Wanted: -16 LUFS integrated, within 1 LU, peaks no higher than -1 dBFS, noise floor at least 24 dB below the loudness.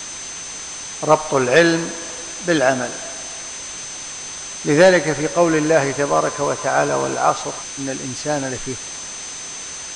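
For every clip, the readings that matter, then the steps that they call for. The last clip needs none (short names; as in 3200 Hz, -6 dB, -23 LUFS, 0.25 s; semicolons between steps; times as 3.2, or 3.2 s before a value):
steady tone 6200 Hz; tone level -31 dBFS; noise floor -32 dBFS; noise floor target -44 dBFS; loudness -19.5 LUFS; peak -1.0 dBFS; loudness target -16.0 LUFS
-> notch 6200 Hz, Q 30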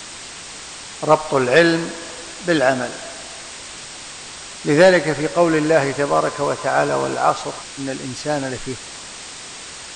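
steady tone none; noise floor -35 dBFS; noise floor target -43 dBFS
-> noise print and reduce 8 dB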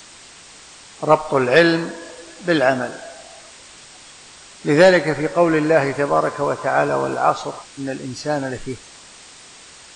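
noise floor -43 dBFS; loudness -18.5 LUFS; peak -1.0 dBFS; loudness target -16.0 LUFS
-> gain +2.5 dB; limiter -1 dBFS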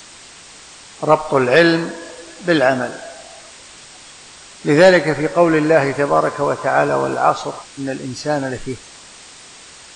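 loudness -16.5 LUFS; peak -1.0 dBFS; noise floor -41 dBFS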